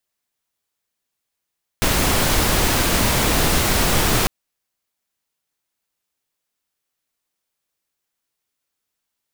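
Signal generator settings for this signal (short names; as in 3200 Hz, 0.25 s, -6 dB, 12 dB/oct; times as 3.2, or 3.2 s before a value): noise pink, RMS -17.5 dBFS 2.45 s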